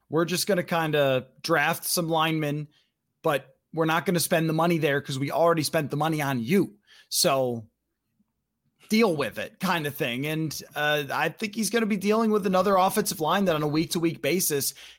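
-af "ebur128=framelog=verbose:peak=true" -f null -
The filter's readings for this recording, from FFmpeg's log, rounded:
Integrated loudness:
  I:         -25.1 LUFS
  Threshold: -35.3 LUFS
Loudness range:
  LRA:         3.4 LU
  Threshold: -45.8 LUFS
  LRA low:   -27.6 LUFS
  LRA high:  -24.2 LUFS
True peak:
  Peak:      -10.1 dBFS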